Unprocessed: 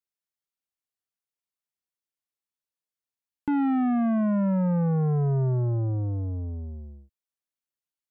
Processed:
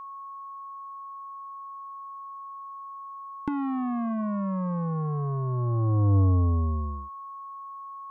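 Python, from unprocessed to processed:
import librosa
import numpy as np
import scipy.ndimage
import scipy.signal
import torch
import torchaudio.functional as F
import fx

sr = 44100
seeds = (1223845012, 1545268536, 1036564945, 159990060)

y = fx.over_compress(x, sr, threshold_db=-28.0, ratio=-0.5)
y = y + 10.0 ** (-42.0 / 20.0) * np.sin(2.0 * np.pi * 1100.0 * np.arange(len(y)) / sr)
y = y * 10.0 ** (4.5 / 20.0)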